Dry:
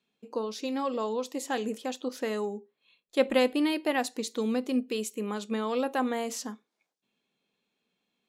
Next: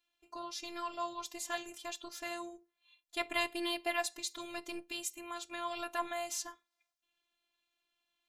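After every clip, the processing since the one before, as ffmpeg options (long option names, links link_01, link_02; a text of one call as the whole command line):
ffmpeg -i in.wav -af "afftfilt=real='hypot(re,im)*cos(PI*b)':imag='0':win_size=512:overlap=0.75,equalizer=frequency=340:width_type=o:width=1.3:gain=-13,volume=2dB" out.wav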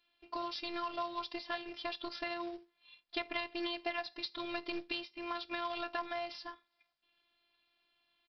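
ffmpeg -i in.wav -af "acompressor=threshold=-41dB:ratio=6,aresample=11025,acrusher=bits=4:mode=log:mix=0:aa=0.000001,aresample=44100,volume=7dB" out.wav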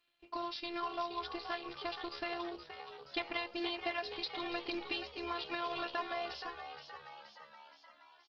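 ffmpeg -i in.wav -filter_complex "[0:a]asplit=2[link_01][link_02];[link_02]asplit=7[link_03][link_04][link_05][link_06][link_07][link_08][link_09];[link_03]adelay=473,afreqshift=71,volume=-9.5dB[link_10];[link_04]adelay=946,afreqshift=142,volume=-14.4dB[link_11];[link_05]adelay=1419,afreqshift=213,volume=-19.3dB[link_12];[link_06]adelay=1892,afreqshift=284,volume=-24.1dB[link_13];[link_07]adelay=2365,afreqshift=355,volume=-29dB[link_14];[link_08]adelay=2838,afreqshift=426,volume=-33.9dB[link_15];[link_09]adelay=3311,afreqshift=497,volume=-38.8dB[link_16];[link_10][link_11][link_12][link_13][link_14][link_15][link_16]amix=inputs=7:normalize=0[link_17];[link_01][link_17]amix=inputs=2:normalize=0" -ar 48000 -c:a libopus -b:a 16k out.opus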